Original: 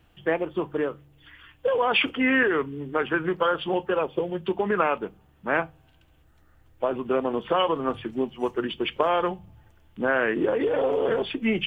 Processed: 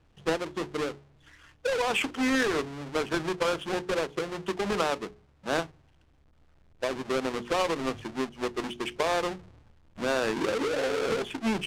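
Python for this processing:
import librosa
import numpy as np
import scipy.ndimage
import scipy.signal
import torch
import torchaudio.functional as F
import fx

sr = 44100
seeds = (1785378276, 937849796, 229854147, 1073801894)

y = fx.halfwave_hold(x, sr)
y = fx.air_absorb(y, sr, metres=63.0)
y = fx.hum_notches(y, sr, base_hz=60, count=7)
y = y * 10.0 ** (-7.5 / 20.0)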